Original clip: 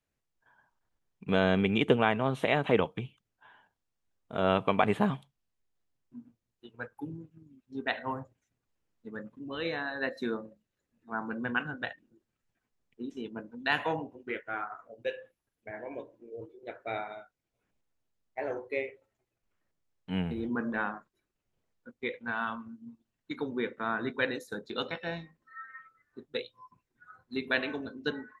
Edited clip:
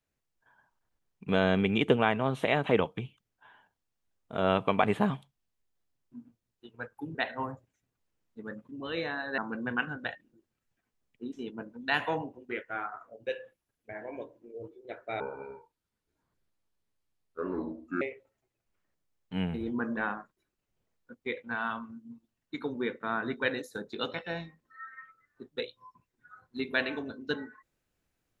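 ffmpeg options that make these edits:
-filter_complex "[0:a]asplit=5[a][b][c][d][e];[a]atrim=end=7.152[f];[b]atrim=start=7.828:end=10.062[g];[c]atrim=start=11.158:end=16.984[h];[d]atrim=start=16.98:end=18.78,asetpts=PTS-STARTPTS,asetrate=28224,aresample=44100,atrim=end_sample=124031,asetpts=PTS-STARTPTS[i];[e]atrim=start=18.776[j];[f][g]acrossfade=d=0.004:c1=hsin:c2=hsin[k];[k][h]acrossfade=d=0.004:c1=hsin:c2=hsin[l];[l][i]acrossfade=d=0.004:c1=hsin:c2=hsin[m];[m][j]acrossfade=d=0.004:c1=hsin:c2=hsin"

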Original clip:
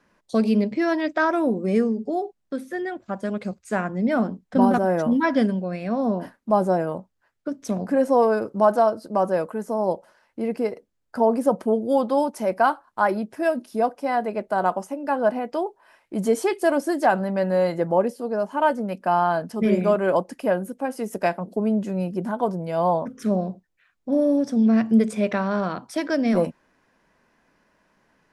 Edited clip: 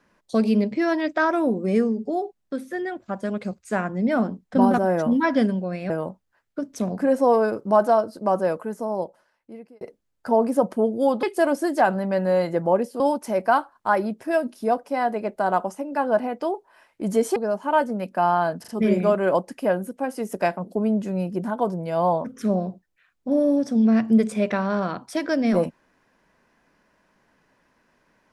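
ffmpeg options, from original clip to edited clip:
-filter_complex "[0:a]asplit=8[a][b][c][d][e][f][g][h];[a]atrim=end=5.902[i];[b]atrim=start=6.788:end=10.7,asetpts=PTS-STARTPTS,afade=t=out:st=2.632:d=1.28[j];[c]atrim=start=10.7:end=12.122,asetpts=PTS-STARTPTS,afade=t=in:d=0.004:c=hsin[k];[d]atrim=start=16.478:end=18.252[l];[e]atrim=start=12.118:end=16.482[m];[f]atrim=start=18.248:end=19.532[n];[g]atrim=start=19.488:end=19.532[o];[h]atrim=start=19.488[p];[j][k]concat=n=2:v=0:a=1[q];[i][q]acrossfade=d=0.004:c1=hsin:c2=hsin[r];[r][l]acrossfade=d=0.004:c1=hsin:c2=hsin[s];[s][m]acrossfade=d=0.004:c1=hsin:c2=hsin[t];[t][n]acrossfade=d=0.004:c1=hsin:c2=hsin[u];[u][o]acrossfade=d=0.004:c1=hsin:c2=hsin[v];[v][p]acrossfade=d=0.004:c1=hsin:c2=hsin"

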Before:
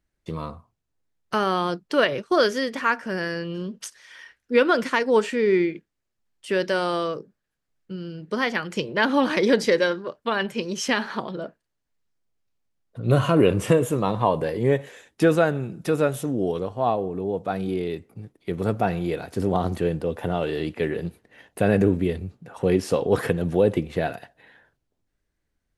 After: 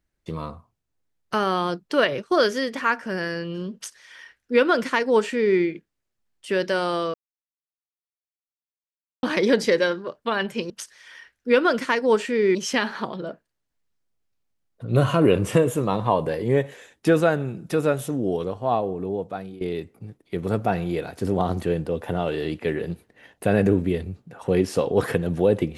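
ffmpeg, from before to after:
-filter_complex "[0:a]asplit=6[a][b][c][d][e][f];[a]atrim=end=7.14,asetpts=PTS-STARTPTS,afade=t=out:st=7.136:d=0.004:c=hsin[g];[b]atrim=start=7.14:end=9.23,asetpts=PTS-STARTPTS,volume=0[h];[c]atrim=start=9.23:end=10.702,asetpts=PTS-STARTPTS,afade=t=in:d=0.004:c=hsin[i];[d]atrim=start=3.738:end=5.592[j];[e]atrim=start=10.698:end=17.76,asetpts=PTS-STARTPTS,afade=t=out:st=6.552:d=0.51:silence=0.11885[k];[f]atrim=start=17.76,asetpts=PTS-STARTPTS,afade=t=in:d=0.004:c=hsin:silence=0.11885[l];[g][h][i]concat=n=3:v=0:a=1[m];[m][j]acrossfade=d=0.004:c1=hsin:c2=hsin[n];[k][l]concat=n=2:v=0:a=1[o];[n][o]acrossfade=d=0.004:c1=hsin:c2=hsin"

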